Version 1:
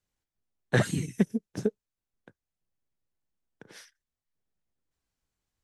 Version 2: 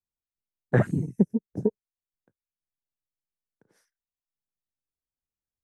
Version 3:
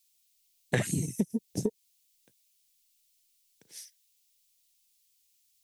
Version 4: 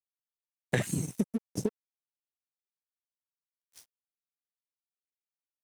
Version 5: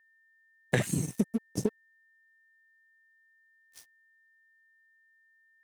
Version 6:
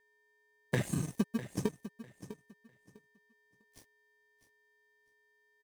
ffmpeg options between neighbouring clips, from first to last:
-af "afwtdn=0.0126,equalizer=f=3200:w=0.82:g=-14,volume=1.5"
-af "acompressor=threshold=0.0562:ratio=6,aexciter=amount=9.9:drive=7.6:freq=2200"
-af "aeval=exprs='sgn(val(0))*max(abs(val(0))-0.00668,0)':c=same"
-af "aeval=exprs='val(0)+0.000562*sin(2*PI*1800*n/s)':c=same,volume=1.19"
-filter_complex "[0:a]asplit=2[s0][s1];[s1]acrusher=samples=32:mix=1:aa=0.000001,volume=0.631[s2];[s0][s2]amix=inputs=2:normalize=0,aecho=1:1:651|1302|1953:0.211|0.0465|0.0102,volume=0.422"

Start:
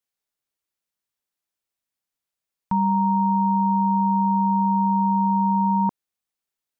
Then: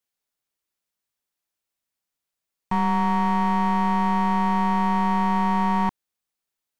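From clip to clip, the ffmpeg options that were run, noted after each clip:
-af "aeval=exprs='clip(val(0),-1,0.0335)':c=same,volume=1.19"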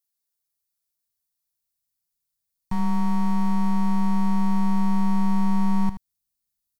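-af "asubboost=boost=7.5:cutoff=170,aexciter=amount=2.1:drive=7.8:freq=4000,aecho=1:1:77:0.251,volume=0.376"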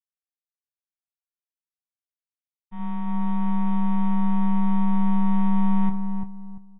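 -filter_complex "[0:a]agate=range=0.0224:threshold=0.2:ratio=3:detection=peak,asplit=2[s0][s1];[s1]adelay=342,lowpass=f=870:p=1,volume=0.596,asplit=2[s2][s3];[s3]adelay=342,lowpass=f=870:p=1,volume=0.3,asplit=2[s4][s5];[s5]adelay=342,lowpass=f=870:p=1,volume=0.3,asplit=2[s6][s7];[s7]adelay=342,lowpass=f=870:p=1,volume=0.3[s8];[s0][s2][s4][s6][s8]amix=inputs=5:normalize=0" -ar 16000 -c:a aac -b:a 16k

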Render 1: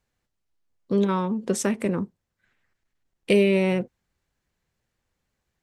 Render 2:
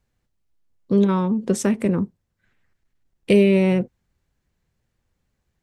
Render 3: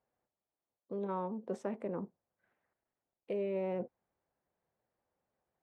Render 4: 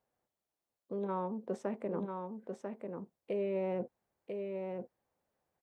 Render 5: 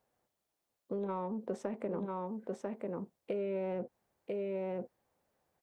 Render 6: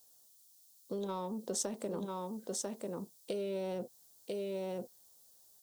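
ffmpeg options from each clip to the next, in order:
-af "lowshelf=f=310:g=8"
-af "areverse,acompressor=threshold=0.0562:ratio=8,areverse,bandpass=f=690:t=q:w=1.6:csg=0"
-af "aecho=1:1:994:0.562,volume=1.12"
-filter_complex "[0:a]asplit=2[s0][s1];[s1]asoftclip=type=tanh:threshold=0.0251,volume=0.355[s2];[s0][s2]amix=inputs=2:normalize=0,acompressor=threshold=0.0178:ratio=6,volume=1.26"
-af "aexciter=amount=13.6:drive=5.5:freq=3500,volume=0.841"

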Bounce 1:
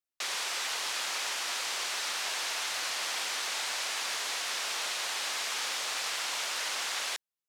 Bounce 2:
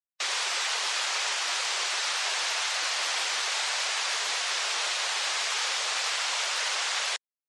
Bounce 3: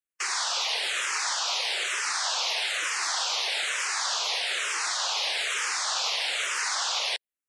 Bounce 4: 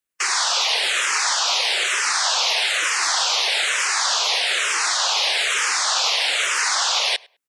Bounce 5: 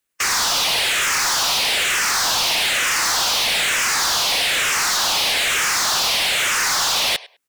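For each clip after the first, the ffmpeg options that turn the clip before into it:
-af "afftdn=nr=32:nf=-44,volume=1.88"
-filter_complex "[0:a]asplit=2[s0][s1];[s1]afreqshift=-1.1[s2];[s0][s2]amix=inputs=2:normalize=1,volume=1.5"
-filter_complex "[0:a]asplit=2[s0][s1];[s1]adelay=102,lowpass=f=2800:p=1,volume=0.0708,asplit=2[s2][s3];[s3]adelay=102,lowpass=f=2800:p=1,volume=0.21[s4];[s0][s2][s4]amix=inputs=3:normalize=0,volume=2.51"
-af "volume=17.8,asoftclip=hard,volume=0.0562,volume=2.37"

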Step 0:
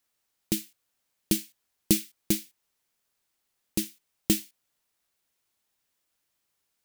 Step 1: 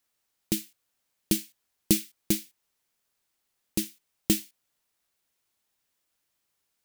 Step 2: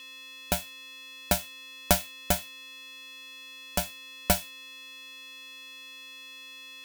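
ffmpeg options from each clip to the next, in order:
-af anull
-af "aeval=exprs='val(0)+0.00708*sin(2*PI*3000*n/s)':c=same,aeval=exprs='val(0)*sgn(sin(2*PI*390*n/s))':c=same"

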